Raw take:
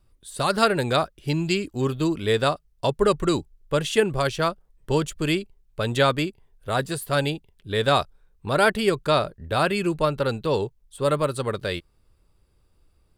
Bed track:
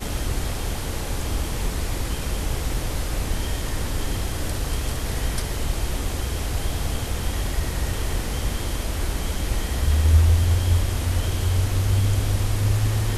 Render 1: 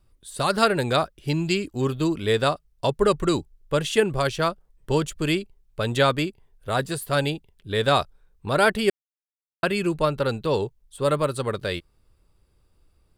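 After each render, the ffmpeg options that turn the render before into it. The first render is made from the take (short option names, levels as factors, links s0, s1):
-filter_complex "[0:a]asplit=3[s0][s1][s2];[s0]atrim=end=8.9,asetpts=PTS-STARTPTS,afade=t=out:st=8.896:d=0.004:c=hsin[s3];[s1]atrim=start=8.9:end=9.63,asetpts=PTS-STARTPTS,volume=0[s4];[s2]atrim=start=9.63,asetpts=PTS-STARTPTS,afade=t=in:d=0.004:c=hsin[s5];[s3][s4][s5]concat=n=3:v=0:a=1"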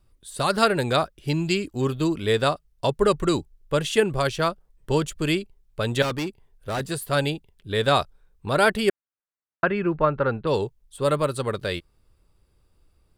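-filter_complex "[0:a]asettb=1/sr,asplit=3[s0][s1][s2];[s0]atrim=end=6.024[s3];[s1]atrim=start=6.02:end=6.81,asetpts=PTS-STARTPTS,afade=t=in:d=0.004:c=qsin,afade=t=out:st=0.786:d=0.004:c=qsin,asoftclip=type=hard:threshold=0.0668[s4];[s2]atrim=start=6.806[s5];[s3][s4]acrossfade=d=0.004:c1=hsin:c2=qsin[s6];[s6][s5]acrossfade=d=0.004:c1=qsin:c2=hsin,asettb=1/sr,asplit=3[s7][s8][s9];[s7]atrim=end=8.894[s10];[s8]atrim=start=8.89:end=10.47,asetpts=PTS-STARTPTS,afade=t=in:d=0.004:c=qsin,afade=t=out:st=1.576:d=0.004:c=qsin,lowpass=f=1600:t=q:w=1.5[s11];[s9]atrim=start=10.466[s12];[s10][s11]acrossfade=d=0.004:c1=hsin:c2=qsin[s13];[s13][s12]acrossfade=d=0.004:c1=qsin:c2=hsin"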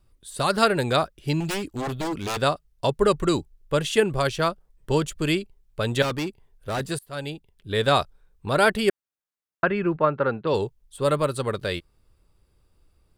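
-filter_complex "[0:a]asettb=1/sr,asplit=3[s0][s1][s2];[s0]atrim=end=1.404[s3];[s1]atrim=start=1.4:end=2.42,asetpts=PTS-STARTPTS,afade=t=in:d=0.004:c=qsin,afade=t=out:st=1.016:d=0.004:c=qsin,aeval=exprs='0.075*(abs(mod(val(0)/0.075+3,4)-2)-1)':c=same[s4];[s2]atrim=start=2.416[s5];[s3][s4]acrossfade=d=0.004:c1=hsin:c2=qsin[s6];[s6][s5]acrossfade=d=0.004:c1=qsin:c2=hsin,asplit=3[s7][s8][s9];[s7]afade=t=out:st=9.96:d=0.02[s10];[s8]highpass=140,lowpass=5400,afade=t=in:st=9.96:d=0.02,afade=t=out:st=10.53:d=0.02[s11];[s9]afade=t=in:st=10.53:d=0.02[s12];[s10][s11][s12]amix=inputs=3:normalize=0,asplit=2[s13][s14];[s13]atrim=end=6.99,asetpts=PTS-STARTPTS,afade=t=out:st=6.986:d=0.004:c=hsin:silence=0.0749894[s15];[s14]atrim=start=6.99,asetpts=PTS-STARTPTS,afade=t=in:d=0.73:silence=0.0749894[s16];[s15][s16]concat=n=2:v=0:a=1"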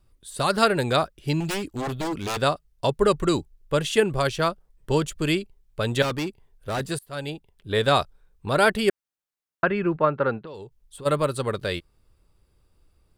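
-filter_complex "[0:a]asettb=1/sr,asplit=3[s0][s1][s2];[s0]atrim=end=7.284[s3];[s1]atrim=start=7.28:end=7.79,asetpts=PTS-STARTPTS,afade=t=in:d=0.004:c=qsin,afade=t=out:st=0.506:d=0.004:c=qsin,equalizer=f=810:t=o:w=1.6:g=5[s4];[s2]atrim=start=7.786[s5];[s3][s4]acrossfade=d=0.004:c1=hsin:c2=qsin[s6];[s6][s5]acrossfade=d=0.004:c1=qsin:c2=hsin,asplit=3[s7][s8][s9];[s7]afade=t=out:st=10.38:d=0.02[s10];[s8]acompressor=threshold=0.0141:ratio=6:attack=3.2:release=140:knee=1:detection=peak,afade=t=in:st=10.38:d=0.02,afade=t=out:st=11.05:d=0.02[s11];[s9]afade=t=in:st=11.05:d=0.02[s12];[s10][s11][s12]amix=inputs=3:normalize=0"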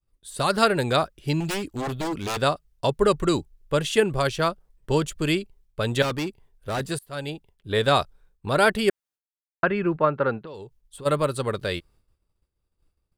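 -af "agate=range=0.0224:threshold=0.00282:ratio=3:detection=peak"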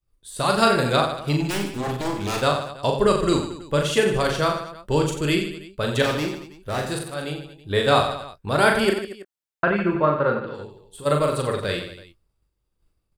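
-filter_complex "[0:a]asplit=2[s0][s1];[s1]adelay=21,volume=0.211[s2];[s0][s2]amix=inputs=2:normalize=0,aecho=1:1:40|90|152.5|230.6|328.3:0.631|0.398|0.251|0.158|0.1"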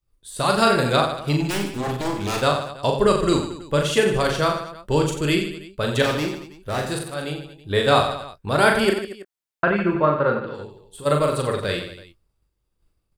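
-af "volume=1.12,alimiter=limit=0.708:level=0:latency=1"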